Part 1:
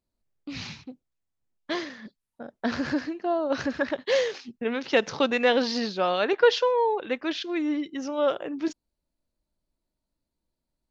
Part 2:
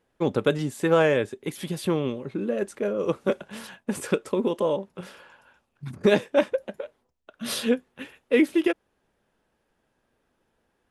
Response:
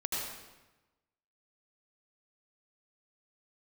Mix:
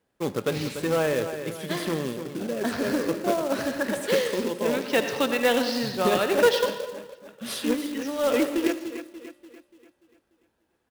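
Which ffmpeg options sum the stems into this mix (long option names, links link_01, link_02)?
-filter_complex "[0:a]volume=-3.5dB,asplit=3[link_01][link_02][link_03];[link_01]atrim=end=6.66,asetpts=PTS-STARTPTS,afade=type=out:start_time=6.656:duration=0.004:curve=hsin[link_04];[link_02]atrim=start=6.66:end=7.64,asetpts=PTS-STARTPTS,volume=0[link_05];[link_03]atrim=start=7.64,asetpts=PTS-STARTPTS,afade=type=in:duration=0.004:curve=hsin[link_06];[link_04][link_05][link_06]concat=n=3:v=0:a=1,asplit=3[link_07][link_08][link_09];[link_08]volume=-8dB[link_10];[link_09]volume=-23.5dB[link_11];[1:a]asoftclip=type=tanh:threshold=-13dB,volume=-4dB,asplit=3[link_12][link_13][link_14];[link_13]volume=-17.5dB[link_15];[link_14]volume=-9dB[link_16];[2:a]atrim=start_sample=2205[link_17];[link_10][link_15]amix=inputs=2:normalize=0[link_18];[link_18][link_17]afir=irnorm=-1:irlink=0[link_19];[link_11][link_16]amix=inputs=2:normalize=0,aecho=0:1:292|584|876|1168|1460|1752|2044:1|0.47|0.221|0.104|0.0488|0.0229|0.0108[link_20];[link_07][link_12][link_19][link_20]amix=inputs=4:normalize=0,highpass=62,acrusher=bits=3:mode=log:mix=0:aa=0.000001,bandreject=frequency=177.4:width_type=h:width=4,bandreject=frequency=354.8:width_type=h:width=4,bandreject=frequency=532.2:width_type=h:width=4,bandreject=frequency=709.6:width_type=h:width=4,bandreject=frequency=887:width_type=h:width=4,bandreject=frequency=1064.4:width_type=h:width=4,bandreject=frequency=1241.8:width_type=h:width=4,bandreject=frequency=1419.2:width_type=h:width=4,bandreject=frequency=1596.6:width_type=h:width=4,bandreject=frequency=1774:width_type=h:width=4,bandreject=frequency=1951.4:width_type=h:width=4,bandreject=frequency=2128.8:width_type=h:width=4,bandreject=frequency=2306.2:width_type=h:width=4,bandreject=frequency=2483.6:width_type=h:width=4,bandreject=frequency=2661:width_type=h:width=4,bandreject=frequency=2838.4:width_type=h:width=4,bandreject=frequency=3015.8:width_type=h:width=4,bandreject=frequency=3193.2:width_type=h:width=4,bandreject=frequency=3370.6:width_type=h:width=4,bandreject=frequency=3548:width_type=h:width=4,bandreject=frequency=3725.4:width_type=h:width=4,bandreject=frequency=3902.8:width_type=h:width=4,bandreject=frequency=4080.2:width_type=h:width=4,bandreject=frequency=4257.6:width_type=h:width=4,bandreject=frequency=4435:width_type=h:width=4,bandreject=frequency=4612.4:width_type=h:width=4,bandreject=frequency=4789.8:width_type=h:width=4,bandreject=frequency=4967.2:width_type=h:width=4"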